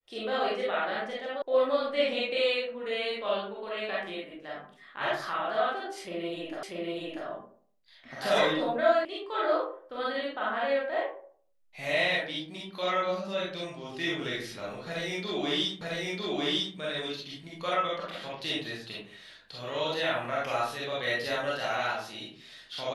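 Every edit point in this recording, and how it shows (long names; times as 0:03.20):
0:01.42: cut off before it has died away
0:06.63: the same again, the last 0.64 s
0:09.05: cut off before it has died away
0:15.81: the same again, the last 0.95 s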